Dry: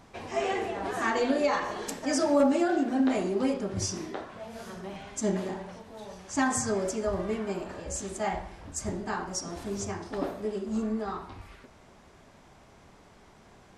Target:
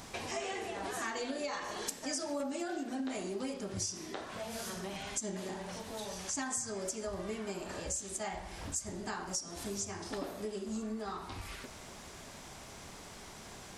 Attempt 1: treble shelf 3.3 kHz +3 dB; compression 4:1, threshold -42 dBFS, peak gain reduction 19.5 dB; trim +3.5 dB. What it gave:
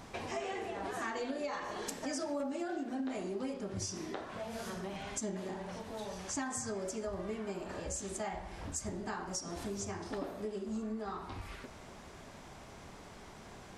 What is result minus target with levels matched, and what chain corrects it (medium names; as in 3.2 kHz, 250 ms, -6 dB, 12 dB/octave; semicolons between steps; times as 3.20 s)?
4 kHz band -4.0 dB
treble shelf 3.3 kHz +14 dB; compression 4:1, threshold -42 dBFS, peak gain reduction 21 dB; trim +3.5 dB